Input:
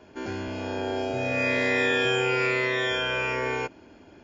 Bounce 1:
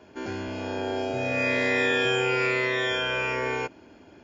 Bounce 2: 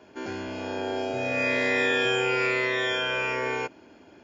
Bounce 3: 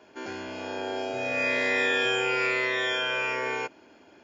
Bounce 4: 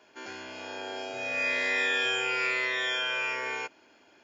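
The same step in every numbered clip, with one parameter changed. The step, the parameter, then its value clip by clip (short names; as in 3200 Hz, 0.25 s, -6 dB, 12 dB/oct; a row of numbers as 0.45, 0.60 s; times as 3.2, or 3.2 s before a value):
HPF, cutoff: 54, 170, 450, 1400 Hz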